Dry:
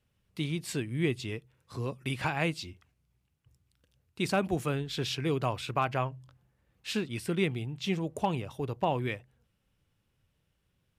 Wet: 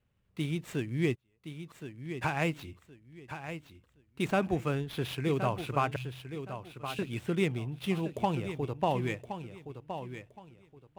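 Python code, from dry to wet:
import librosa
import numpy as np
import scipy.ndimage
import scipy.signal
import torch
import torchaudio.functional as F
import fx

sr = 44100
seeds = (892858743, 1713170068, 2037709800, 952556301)

p1 = scipy.signal.medfilt(x, 9)
p2 = fx.gate_flip(p1, sr, shuts_db=-39.0, range_db=-37, at=(1.14, 2.21), fade=0.02)
p3 = fx.ellip_bandstop(p2, sr, low_hz=110.0, high_hz=2600.0, order=3, stop_db=40, at=(5.96, 6.99))
y = p3 + fx.echo_feedback(p3, sr, ms=1069, feedback_pct=25, wet_db=-10.0, dry=0)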